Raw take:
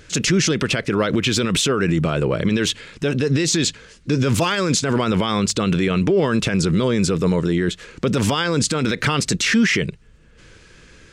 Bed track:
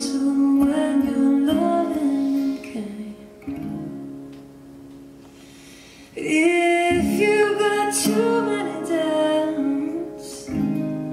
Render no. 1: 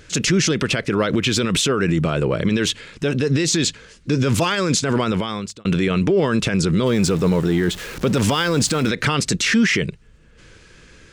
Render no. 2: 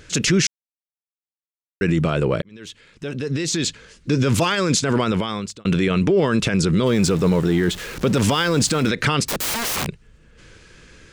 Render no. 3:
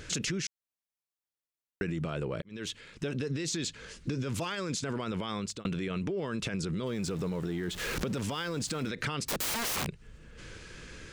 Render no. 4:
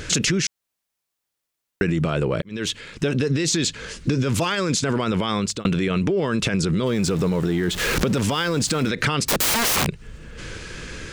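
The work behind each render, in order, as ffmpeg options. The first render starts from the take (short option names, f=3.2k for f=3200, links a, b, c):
-filter_complex "[0:a]asettb=1/sr,asplit=3[a][b][c];[a]atrim=end=6.864[d];[b]atrim=start=6.86:end=8.89,asetpts=PTS-STARTPTS,afade=t=in:d=0.004:c=qsin,afade=t=out:st=2.026:d=0.004:c=qsin,aeval=exprs='val(0)+0.5*0.0316*sgn(val(0))':c=same[e];[c]atrim=start=8.886[f];[d][e]acrossfade=d=0.004:c1=hsin:c2=qsin[g];[g][f]acrossfade=d=0.004:c1=qsin:c2=hsin,asplit=2[h][i];[h]atrim=end=5.65,asetpts=PTS-STARTPTS,afade=t=out:st=5.02:d=0.63[j];[i]atrim=start=5.65,asetpts=PTS-STARTPTS,afade=t=in:d=0.004:c=hsin[k];[j][k]concat=n=2:v=0:a=1"
-filter_complex "[0:a]asettb=1/sr,asplit=3[a][b][c];[a]atrim=end=9.264[d];[b]atrim=start=9.26:end=9.87,asetpts=PTS-STARTPTS,afade=t=in:d=0.004:c=qsin,afade=t=out:st=0.606:d=0.004:c=qsin,aeval=exprs='(mod(8.91*val(0)+1,2)-1)/8.91':c=same[e];[c]atrim=start=9.866[f];[d][e]acrossfade=d=0.004:c1=hsin:c2=qsin[g];[g][f]acrossfade=d=0.004:c1=qsin:c2=hsin,asplit=4[h][i][j][k];[h]atrim=end=0.47,asetpts=PTS-STARTPTS,afade=t=out:st=0.466:d=0.004:c=hsin[l];[i]atrim=start=0.47:end=1.81,asetpts=PTS-STARTPTS,volume=0[m];[j]atrim=start=1.81:end=2.42,asetpts=PTS-STARTPTS,afade=t=in:d=0.004:c=hsin,afade=t=out:st=0.606:d=0.004:c=hsin[n];[k]atrim=start=2.42,asetpts=PTS-STARTPTS,afade=t=in:d=1.71[o];[l][m][n][o]concat=n=4:v=0:a=1"
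-af "alimiter=limit=-15dB:level=0:latency=1:release=112,acompressor=threshold=-30dB:ratio=12"
-af "volume=12dB"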